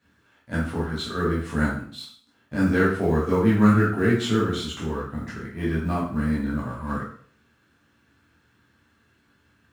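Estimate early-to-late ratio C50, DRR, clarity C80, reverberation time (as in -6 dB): 3.5 dB, -7.5 dB, 8.0 dB, 0.50 s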